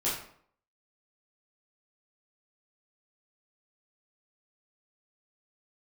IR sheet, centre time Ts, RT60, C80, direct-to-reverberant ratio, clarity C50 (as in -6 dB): 45 ms, 0.60 s, 7.5 dB, -9.5 dB, 3.5 dB